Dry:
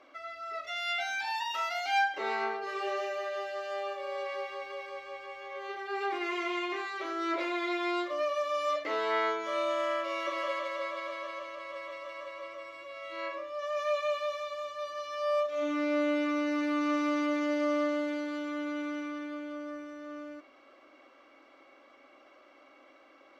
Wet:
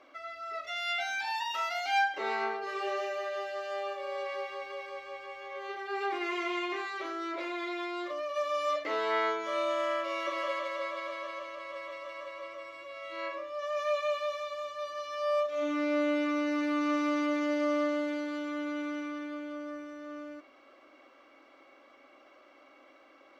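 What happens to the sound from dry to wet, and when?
0:06.96–0:08.36: downward compressor, threshold −32 dBFS

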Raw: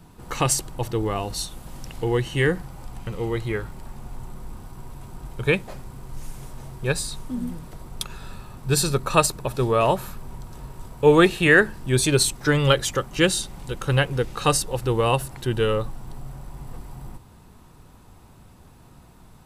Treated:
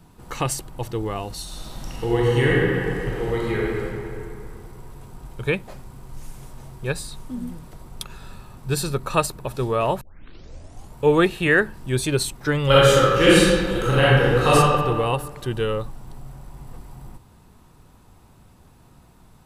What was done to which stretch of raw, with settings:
0:01.42–0:03.83: thrown reverb, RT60 2.6 s, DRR −5.5 dB
0:10.01: tape start 0.97 s
0:12.66–0:14.54: thrown reverb, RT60 1.7 s, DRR −9.5 dB
whole clip: dynamic equaliser 6,500 Hz, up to −5 dB, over −37 dBFS, Q 0.83; level −2 dB

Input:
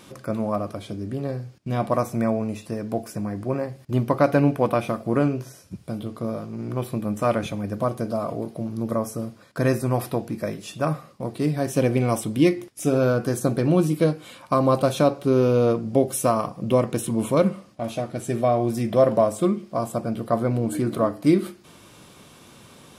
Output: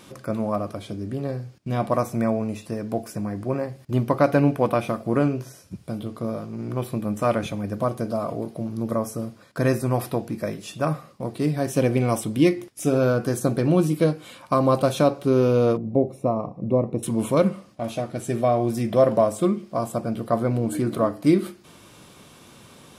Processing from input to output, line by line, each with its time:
0:15.77–0:17.03: moving average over 28 samples

